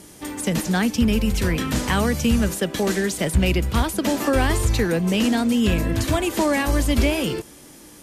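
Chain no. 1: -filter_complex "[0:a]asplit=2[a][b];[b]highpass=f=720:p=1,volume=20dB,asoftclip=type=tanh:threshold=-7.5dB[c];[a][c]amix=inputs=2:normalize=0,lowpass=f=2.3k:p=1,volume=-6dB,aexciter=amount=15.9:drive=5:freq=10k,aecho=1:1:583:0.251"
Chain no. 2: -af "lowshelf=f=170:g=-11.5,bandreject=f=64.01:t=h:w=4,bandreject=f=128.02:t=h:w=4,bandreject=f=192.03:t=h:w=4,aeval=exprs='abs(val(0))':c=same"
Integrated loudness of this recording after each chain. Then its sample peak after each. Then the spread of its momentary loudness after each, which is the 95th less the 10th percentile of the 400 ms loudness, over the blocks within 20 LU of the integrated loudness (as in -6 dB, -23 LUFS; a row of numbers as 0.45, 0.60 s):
-15.0, -28.5 LUFS; -2.0, -9.5 dBFS; 3, 5 LU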